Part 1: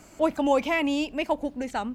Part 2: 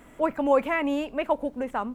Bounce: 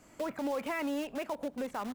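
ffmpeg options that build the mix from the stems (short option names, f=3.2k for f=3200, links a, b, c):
-filter_complex "[0:a]acompressor=threshold=-30dB:ratio=2,aeval=exprs='(mod(35.5*val(0)+1,2)-1)/35.5':c=same,volume=-10dB[a];[1:a]highpass=130,agate=range=-33dB:threshold=-45dB:ratio=3:detection=peak,alimiter=limit=-19dB:level=0:latency=1,adelay=2.3,volume=-1.5dB[b];[a][b]amix=inputs=2:normalize=0,alimiter=level_in=2dB:limit=-24dB:level=0:latency=1:release=299,volume=-2dB"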